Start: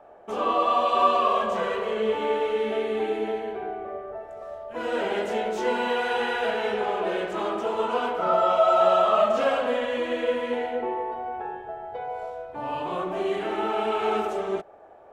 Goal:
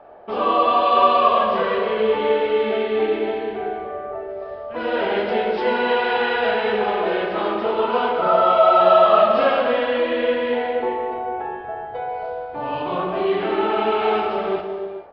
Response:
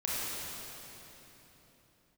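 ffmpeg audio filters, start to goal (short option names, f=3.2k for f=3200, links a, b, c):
-filter_complex "[0:a]asplit=2[a][b];[b]adelay=39,volume=-12.5dB[c];[a][c]amix=inputs=2:normalize=0,asplit=2[d][e];[1:a]atrim=start_sample=2205,afade=t=out:st=0.42:d=0.01,atrim=end_sample=18963,adelay=95[f];[e][f]afir=irnorm=-1:irlink=0,volume=-13.5dB[g];[d][g]amix=inputs=2:normalize=0,aresample=11025,aresample=44100,volume=5dB"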